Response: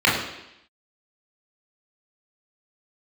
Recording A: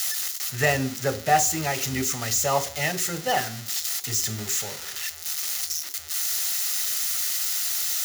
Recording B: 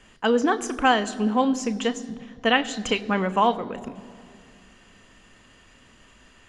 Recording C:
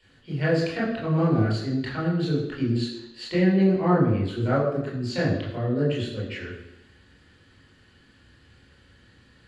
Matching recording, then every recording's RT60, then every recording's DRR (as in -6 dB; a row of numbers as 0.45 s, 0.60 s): C; 0.45 s, 2.4 s, 0.85 s; 11.0 dB, 11.0 dB, -6.5 dB